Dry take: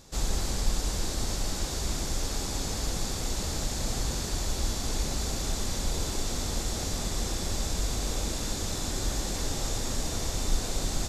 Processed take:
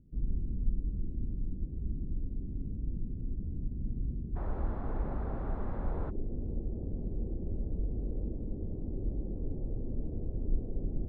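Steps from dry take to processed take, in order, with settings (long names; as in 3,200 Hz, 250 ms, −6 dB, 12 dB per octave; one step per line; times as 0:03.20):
inverse Chebyshev low-pass filter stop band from 1,700 Hz, stop band 80 dB, from 0:04.35 stop band from 7,600 Hz, from 0:06.09 stop band from 2,600 Hz
level −3 dB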